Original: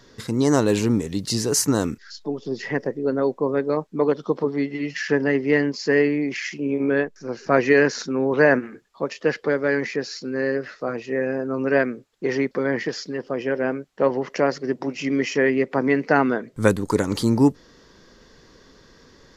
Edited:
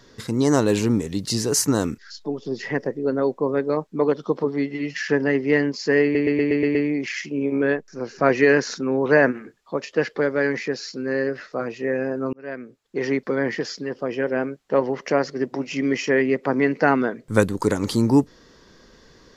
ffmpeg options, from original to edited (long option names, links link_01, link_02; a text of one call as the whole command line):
ffmpeg -i in.wav -filter_complex "[0:a]asplit=8[link_01][link_02][link_03][link_04][link_05][link_06][link_07][link_08];[link_01]atrim=end=6.152[link_09];[link_02]atrim=start=6.028:end=6.152[link_10];[link_03]atrim=start=6.028:end=6.152[link_11];[link_04]atrim=start=6.028:end=6.152[link_12];[link_05]atrim=start=6.028:end=6.152[link_13];[link_06]atrim=start=6.028:end=6.152[link_14];[link_07]atrim=start=6.028:end=11.61,asetpts=PTS-STARTPTS,afade=type=out:start_time=5.578:duration=0.004:curve=hsin[link_15];[link_08]atrim=start=11.61,asetpts=PTS-STARTPTS,afade=type=in:duration=0.81[link_16];[link_09][link_10]acrossfade=duration=0.004:curve1=hsin:curve2=hsin[link_17];[link_17][link_11]acrossfade=duration=0.004:curve1=hsin:curve2=hsin[link_18];[link_18][link_12]acrossfade=duration=0.004:curve1=hsin:curve2=hsin[link_19];[link_19][link_13]acrossfade=duration=0.004:curve1=hsin:curve2=hsin[link_20];[link_20][link_14]acrossfade=duration=0.004:curve1=hsin:curve2=hsin[link_21];[link_15][link_16]concat=n=2:v=0:a=1[link_22];[link_21][link_22]acrossfade=duration=0.004:curve1=hsin:curve2=hsin" out.wav